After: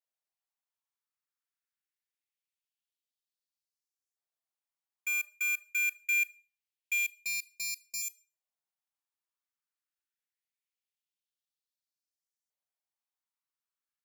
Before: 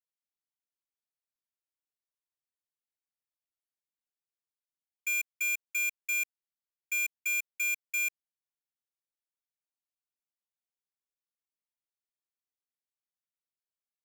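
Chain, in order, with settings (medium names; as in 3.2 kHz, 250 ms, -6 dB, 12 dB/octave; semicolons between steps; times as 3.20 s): 7.14–8.02 s: median filter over 25 samples; LFO high-pass saw up 0.24 Hz 580–6300 Hz; Schroeder reverb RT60 0.33 s, combs from 25 ms, DRR 18.5 dB; trim -2.5 dB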